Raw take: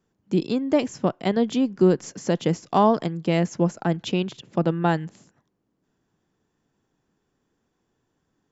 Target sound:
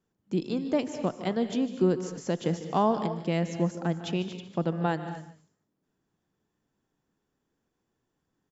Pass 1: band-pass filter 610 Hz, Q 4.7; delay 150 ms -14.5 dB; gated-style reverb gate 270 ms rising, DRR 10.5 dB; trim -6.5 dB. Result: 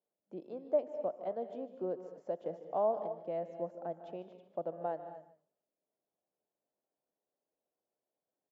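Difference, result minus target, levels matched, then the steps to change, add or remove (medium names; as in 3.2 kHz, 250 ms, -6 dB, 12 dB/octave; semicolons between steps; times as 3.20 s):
500 Hz band +4.0 dB
remove: band-pass filter 610 Hz, Q 4.7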